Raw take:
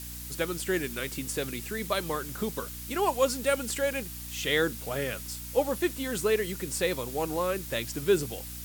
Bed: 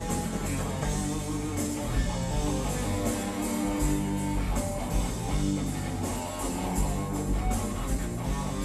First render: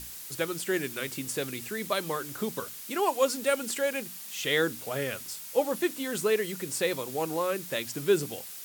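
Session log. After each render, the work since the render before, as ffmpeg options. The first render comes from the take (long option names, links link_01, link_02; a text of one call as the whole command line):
ffmpeg -i in.wav -af "bandreject=frequency=60:width_type=h:width=6,bandreject=frequency=120:width_type=h:width=6,bandreject=frequency=180:width_type=h:width=6,bandreject=frequency=240:width_type=h:width=6,bandreject=frequency=300:width_type=h:width=6" out.wav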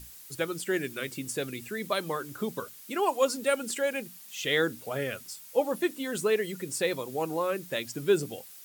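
ffmpeg -i in.wav -af "afftdn=noise_reduction=8:noise_floor=-42" out.wav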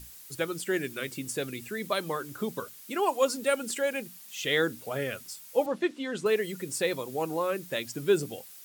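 ffmpeg -i in.wav -filter_complex "[0:a]asettb=1/sr,asplit=3[link_01][link_02][link_03];[link_01]atrim=end=5.664[link_04];[link_02]atrim=start=5.66:end=6.26,asetpts=PTS-STARTPTS,afade=type=in:duration=0.004:curve=qsin,afade=type=out:start_time=0.596:duration=0.004:curve=qsin,highpass=140,lowpass=4800[link_05];[link_03]atrim=start=6.256[link_06];[link_04][link_05]acrossfade=duration=0.004:curve1=hsin:curve2=qsin[link_07];[link_07][link_06]acrossfade=duration=0.004:curve1=qsin:curve2=hsin" out.wav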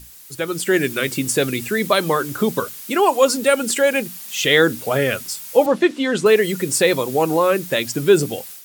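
ffmpeg -i in.wav -filter_complex "[0:a]asplit=2[link_01][link_02];[link_02]alimiter=limit=-22.5dB:level=0:latency=1,volume=-2.5dB[link_03];[link_01][link_03]amix=inputs=2:normalize=0,dynaudnorm=framelen=370:gausssize=3:maxgain=10.5dB" out.wav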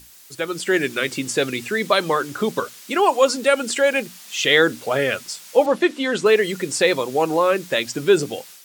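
ffmpeg -i in.wav -filter_complex "[0:a]acrossover=split=7900[link_01][link_02];[link_02]acompressor=threshold=-45dB:ratio=4:attack=1:release=60[link_03];[link_01][link_03]amix=inputs=2:normalize=0,lowshelf=frequency=200:gain=-10" out.wav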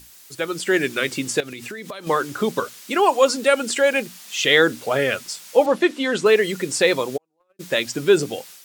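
ffmpeg -i in.wav -filter_complex "[0:a]asettb=1/sr,asplit=3[link_01][link_02][link_03];[link_01]atrim=end=1.404[link_04];[link_02]atrim=start=1.4:end=2.07,asetpts=PTS-STARTPTS,afade=type=in:duration=0.004:curve=qsin,afade=type=out:start_time=0.666:duration=0.004:curve=qsin,acompressor=threshold=-29dB:ratio=16:attack=3.2:release=140:knee=1:detection=peak[link_05];[link_03]atrim=start=2.066[link_06];[link_04][link_05]acrossfade=duration=0.004:curve1=hsin:curve2=qsin[link_07];[link_07][link_06]acrossfade=duration=0.004:curve1=qsin:curve2=hsin,asettb=1/sr,asplit=3[link_08][link_09][link_10];[link_08]atrim=end=2.924[link_11];[link_09]atrim=start=2.92:end=3.55,asetpts=PTS-STARTPTS,afade=type=in:duration=0.004:curve=qsin,afade=type=out:start_time=0.626:duration=0.004:curve=qsin,aeval=exprs='val(0)*gte(abs(val(0)),0.00794)':channel_layout=same[link_12];[link_10]atrim=start=3.546[link_13];[link_11][link_12]acrossfade=duration=0.004:curve1=hsin:curve2=qsin[link_14];[link_14][link_13]acrossfade=duration=0.004:curve1=qsin:curve2=hsin,asplit=3[link_15][link_16][link_17];[link_15]afade=type=out:start_time=7.16:duration=0.02[link_18];[link_16]agate=range=-53dB:threshold=-11dB:ratio=16:release=100:detection=peak,afade=type=in:start_time=7.16:duration=0.02,afade=type=out:start_time=7.59:duration=0.02[link_19];[link_17]afade=type=in:start_time=7.59:duration=0.02[link_20];[link_18][link_19][link_20]amix=inputs=3:normalize=0" out.wav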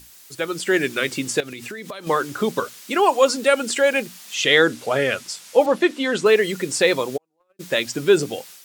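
ffmpeg -i in.wav -filter_complex "[0:a]asettb=1/sr,asplit=3[link_01][link_02][link_03];[link_01]atrim=end=4.344[link_04];[link_02]atrim=start=4.34:end=5.6,asetpts=PTS-STARTPTS,afade=type=in:duration=0.004:curve=qsin,afade=type=out:start_time=1.256:duration=0.004:curve=qsin,lowpass=12000[link_05];[link_03]atrim=start=5.596[link_06];[link_04][link_05]acrossfade=duration=0.004:curve1=hsin:curve2=qsin[link_07];[link_07][link_06]acrossfade=duration=0.004:curve1=qsin:curve2=hsin" out.wav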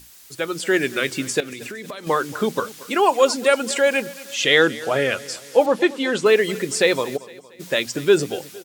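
ffmpeg -i in.wav -af "aecho=1:1:230|460|690|920:0.112|0.0539|0.0259|0.0124" out.wav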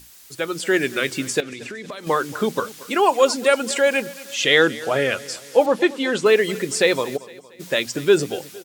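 ffmpeg -i in.wav -filter_complex "[0:a]asplit=3[link_01][link_02][link_03];[link_01]afade=type=out:start_time=1.41:duration=0.02[link_04];[link_02]lowpass=7400,afade=type=in:start_time=1.41:duration=0.02,afade=type=out:start_time=1.9:duration=0.02[link_05];[link_03]afade=type=in:start_time=1.9:duration=0.02[link_06];[link_04][link_05][link_06]amix=inputs=3:normalize=0" out.wav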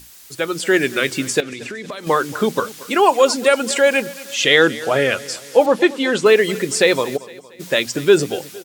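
ffmpeg -i in.wav -af "volume=3.5dB,alimiter=limit=-2dB:level=0:latency=1" out.wav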